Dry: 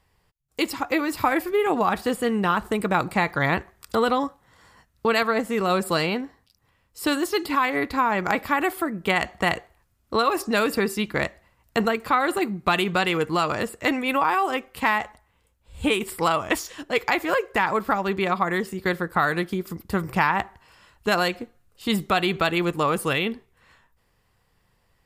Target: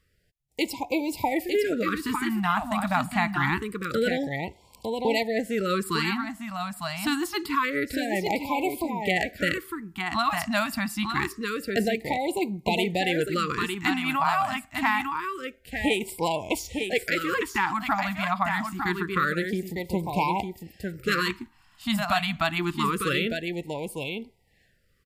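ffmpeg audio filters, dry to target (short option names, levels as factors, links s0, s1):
-af "aecho=1:1:904:0.531,afftfilt=real='re*(1-between(b*sr/1024,400*pow(1500/400,0.5+0.5*sin(2*PI*0.26*pts/sr))/1.41,400*pow(1500/400,0.5+0.5*sin(2*PI*0.26*pts/sr))*1.41))':imag='im*(1-between(b*sr/1024,400*pow(1500/400,0.5+0.5*sin(2*PI*0.26*pts/sr))/1.41,400*pow(1500/400,0.5+0.5*sin(2*PI*0.26*pts/sr))*1.41))':win_size=1024:overlap=0.75,volume=0.75"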